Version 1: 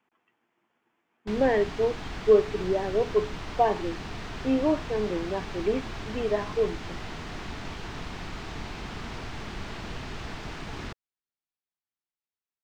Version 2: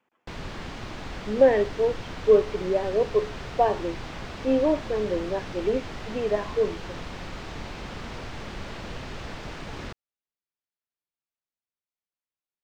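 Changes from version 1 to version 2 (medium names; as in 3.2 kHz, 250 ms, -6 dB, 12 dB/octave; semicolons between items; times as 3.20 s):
background: entry -1.00 s; master: add peaking EQ 540 Hz +9 dB 0.24 oct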